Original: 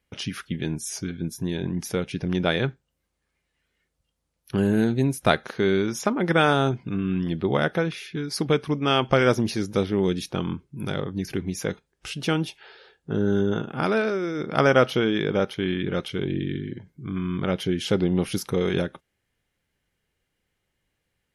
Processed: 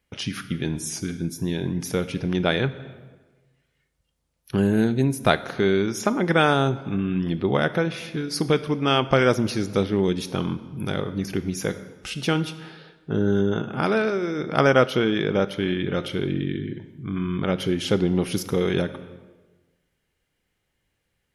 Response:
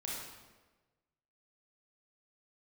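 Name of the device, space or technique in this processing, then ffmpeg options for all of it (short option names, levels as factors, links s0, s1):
compressed reverb return: -filter_complex "[0:a]asplit=2[s0][s1];[1:a]atrim=start_sample=2205[s2];[s1][s2]afir=irnorm=-1:irlink=0,acompressor=threshold=0.0708:ratio=6,volume=0.355[s3];[s0][s3]amix=inputs=2:normalize=0"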